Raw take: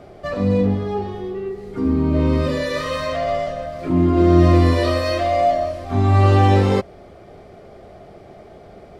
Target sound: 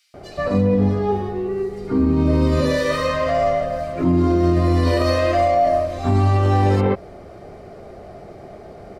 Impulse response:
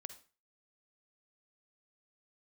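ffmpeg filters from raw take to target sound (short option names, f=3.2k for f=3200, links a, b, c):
-filter_complex "[0:a]bandreject=f=3.4k:w=14,acrossover=split=2900[a][b];[a]adelay=140[c];[c][b]amix=inputs=2:normalize=0,alimiter=level_in=11.5dB:limit=-1dB:release=50:level=0:latency=1,volume=-8dB"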